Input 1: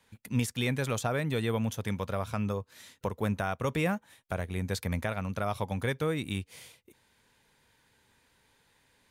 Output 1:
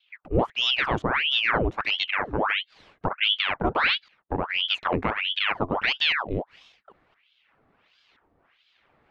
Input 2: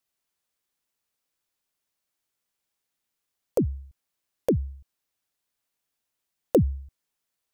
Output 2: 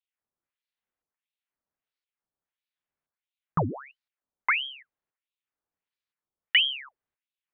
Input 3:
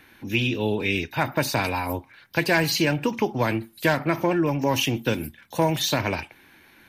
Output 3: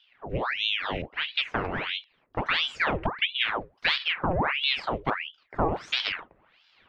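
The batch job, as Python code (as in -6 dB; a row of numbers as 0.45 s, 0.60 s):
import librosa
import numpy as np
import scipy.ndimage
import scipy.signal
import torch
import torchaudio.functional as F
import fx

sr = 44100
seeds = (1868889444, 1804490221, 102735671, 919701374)

y = fx.cheby_harmonics(x, sr, harmonics=(2,), levels_db=(-18,), full_scale_db=-6.5)
y = fx.filter_lfo_lowpass(y, sr, shape='saw_up', hz=0.98, low_hz=550.0, high_hz=1700.0, q=0.92)
y = fx.ring_lfo(y, sr, carrier_hz=1700.0, swing_pct=90, hz=1.5)
y = librosa.util.normalize(y) * 10.0 ** (-9 / 20.0)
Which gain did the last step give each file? +9.0 dB, +0.5 dB, -1.0 dB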